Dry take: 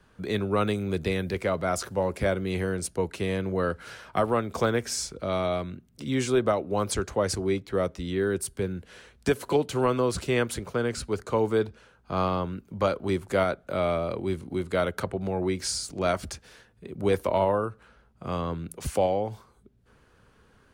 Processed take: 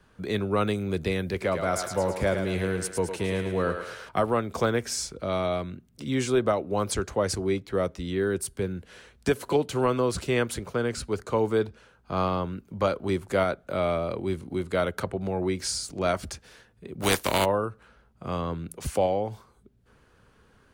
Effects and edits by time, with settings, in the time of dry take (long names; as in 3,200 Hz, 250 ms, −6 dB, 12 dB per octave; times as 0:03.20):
0:01.30–0:04.09: feedback echo with a high-pass in the loop 108 ms, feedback 58%, high-pass 430 Hz, level −6 dB
0:17.01–0:17.44: compressing power law on the bin magnitudes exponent 0.43